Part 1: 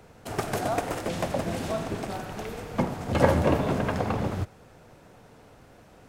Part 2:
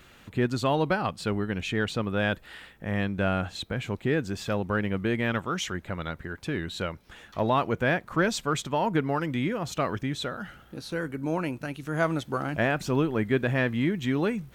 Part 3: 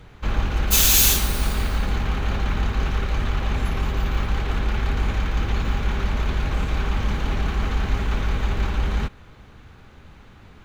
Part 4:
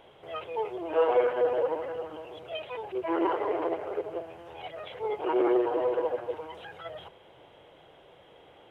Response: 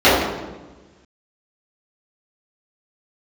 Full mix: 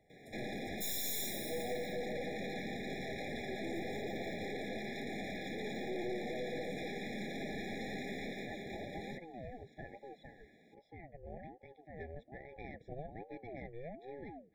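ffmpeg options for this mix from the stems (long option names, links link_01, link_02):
-filter_complex "[0:a]acompressor=threshold=-31dB:ratio=6,volume=-19.5dB[link_01];[1:a]lowpass=2000,aeval=exprs='val(0)*sin(2*PI*470*n/s+470*0.5/1.2*sin(2*PI*1.2*n/s))':channel_layout=same,volume=-13.5dB[link_02];[2:a]highpass=frequency=190:width=0.5412,highpass=frequency=190:width=1.3066,bandreject=frequency=830:width=12,adelay=100,volume=-1.5dB,afade=type=out:start_time=8.13:duration=0.4:silence=0.398107[link_03];[3:a]adelay=550,volume=-5.5dB[link_04];[link_02][link_03][link_04]amix=inputs=3:normalize=0,aeval=exprs='(tanh(28.2*val(0)+0.55)-tanh(0.55))/28.2':channel_layout=same,alimiter=level_in=7dB:limit=-24dB:level=0:latency=1,volume=-7dB,volume=0dB[link_05];[link_01][link_05]amix=inputs=2:normalize=0,afftfilt=real='re*eq(mod(floor(b*sr/1024/830),2),0)':imag='im*eq(mod(floor(b*sr/1024/830),2),0)':win_size=1024:overlap=0.75"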